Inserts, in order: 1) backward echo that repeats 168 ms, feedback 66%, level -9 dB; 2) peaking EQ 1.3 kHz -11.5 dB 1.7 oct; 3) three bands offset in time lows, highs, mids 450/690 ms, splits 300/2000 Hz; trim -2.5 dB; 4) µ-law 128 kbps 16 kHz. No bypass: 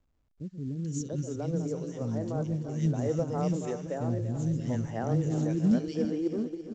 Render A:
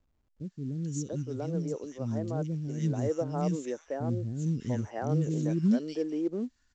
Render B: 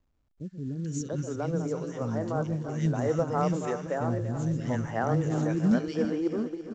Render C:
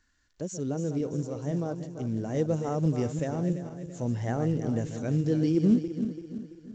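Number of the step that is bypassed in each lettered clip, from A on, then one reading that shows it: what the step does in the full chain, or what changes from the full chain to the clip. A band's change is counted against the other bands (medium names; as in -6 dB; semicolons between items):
1, momentary loudness spread change +1 LU; 2, 2 kHz band +7.0 dB; 3, momentary loudness spread change +3 LU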